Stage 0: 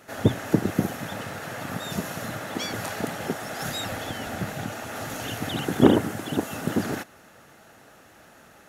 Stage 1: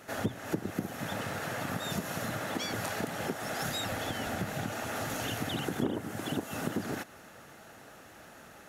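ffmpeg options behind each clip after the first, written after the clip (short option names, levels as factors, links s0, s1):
-af "acompressor=threshold=0.0282:ratio=4"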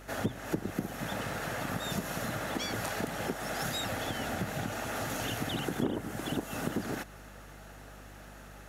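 -af "aeval=exprs='val(0)+0.00282*(sin(2*PI*50*n/s)+sin(2*PI*2*50*n/s)/2+sin(2*PI*3*50*n/s)/3+sin(2*PI*4*50*n/s)/4+sin(2*PI*5*50*n/s)/5)':c=same"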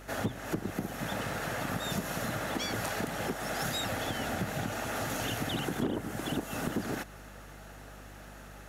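-af "asoftclip=type=hard:threshold=0.0562,volume=1.12"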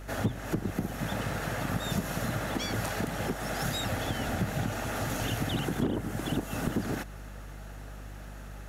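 -af "lowshelf=f=150:g=9.5"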